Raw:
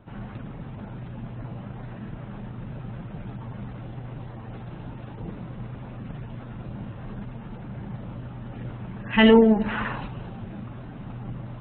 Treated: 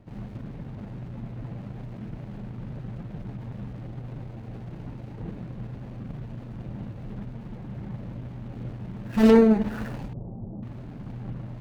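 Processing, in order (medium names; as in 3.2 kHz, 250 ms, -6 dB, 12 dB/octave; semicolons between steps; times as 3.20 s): median filter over 41 samples; 10.13–10.63 s: inverse Chebyshev low-pass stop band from 2.8 kHz, stop band 60 dB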